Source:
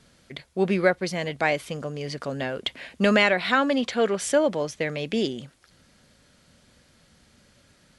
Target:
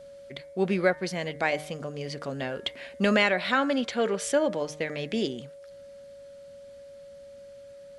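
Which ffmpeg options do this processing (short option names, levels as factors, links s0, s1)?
-af "bandreject=f=151.5:t=h:w=4,bandreject=f=303:t=h:w=4,bandreject=f=454.5:t=h:w=4,bandreject=f=606:t=h:w=4,bandreject=f=757.5:t=h:w=4,bandreject=f=909:t=h:w=4,bandreject=f=1060.5:t=h:w=4,bandreject=f=1212:t=h:w=4,bandreject=f=1363.5:t=h:w=4,bandreject=f=1515:t=h:w=4,bandreject=f=1666.5:t=h:w=4,bandreject=f=1818:t=h:w=4,bandreject=f=1969.5:t=h:w=4,bandreject=f=2121:t=h:w=4,bandreject=f=2272.5:t=h:w=4,aeval=exprs='val(0)+0.00891*sin(2*PI*560*n/s)':c=same,volume=0.708"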